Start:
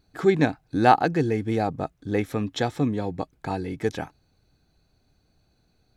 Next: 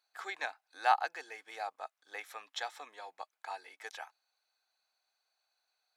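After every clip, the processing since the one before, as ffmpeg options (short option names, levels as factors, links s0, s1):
-af "highpass=f=780:w=0.5412,highpass=f=780:w=1.3066,volume=0.422"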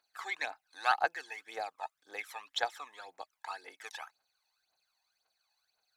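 -af "aphaser=in_gain=1:out_gain=1:delay=1.2:decay=0.68:speed=1.9:type=triangular"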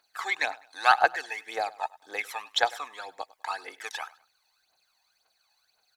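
-af "aecho=1:1:101|202:0.0891|0.0285,volume=2.66"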